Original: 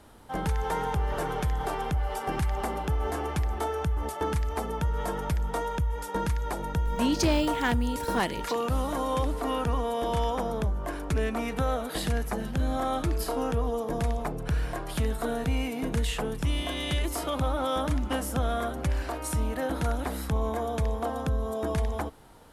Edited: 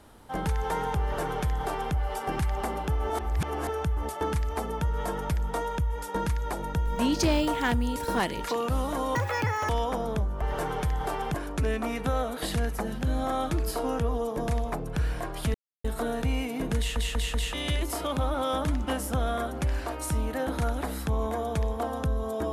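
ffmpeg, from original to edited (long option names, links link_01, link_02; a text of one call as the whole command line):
ffmpeg -i in.wav -filter_complex "[0:a]asplit=12[link_01][link_02][link_03][link_04][link_05][link_06][link_07][link_08][link_09][link_10][link_11][link_12];[link_01]atrim=end=3.102[link_13];[link_02]atrim=start=3.098:end=3.692,asetpts=PTS-STARTPTS,areverse[link_14];[link_03]atrim=start=3.688:end=9.154[link_15];[link_04]atrim=start=9.15:end=10.15,asetpts=PTS-STARTPTS,asetrate=81144,aresample=44100,atrim=end_sample=23967,asetpts=PTS-STARTPTS[link_16];[link_05]atrim=start=10.146:end=10.872[link_17];[link_06]atrim=start=1.008:end=1.942[link_18];[link_07]atrim=start=10.868:end=15.07,asetpts=PTS-STARTPTS,afade=type=out:start_time=4.198:duration=0.004:curve=hsin,apad=pad_dur=0.3[link_19];[link_08]atrim=start=15.07:end=16.192,asetpts=PTS-STARTPTS,afade=type=in:duration=0.004:curve=hsin[link_20];[link_09]atrim=start=15.998:end=16.192[link_21];[link_10]atrim=start=15.998:end=16.192[link_22];[link_11]atrim=start=15.998:end=16.192[link_23];[link_12]atrim=start=16.758[link_24];[link_13][link_14]acrossfade=duration=0.004:curve1=hsin:curve2=hsin[link_25];[link_25][link_15]acrossfade=duration=0.004:curve1=hsin:curve2=hsin[link_26];[link_26][link_16]acrossfade=duration=0.004:curve1=hsin:curve2=hsin[link_27];[link_27][link_17]acrossfade=duration=0.004:curve1=hsin:curve2=hsin[link_28];[link_28][link_18]acrossfade=duration=0.004:curve1=hsin:curve2=hsin[link_29];[link_19][link_20]concat=n=2:v=0:a=1[link_30];[link_29][link_30]acrossfade=duration=0.004:curve1=hsin:curve2=hsin[link_31];[link_31][link_21]acrossfade=duration=0.004:curve1=hsin:curve2=hsin[link_32];[link_32][link_22]acrossfade=duration=0.004:curve1=hsin:curve2=hsin[link_33];[link_33][link_23]acrossfade=duration=0.004:curve1=hsin:curve2=hsin[link_34];[link_34][link_24]acrossfade=duration=0.004:curve1=hsin:curve2=hsin" out.wav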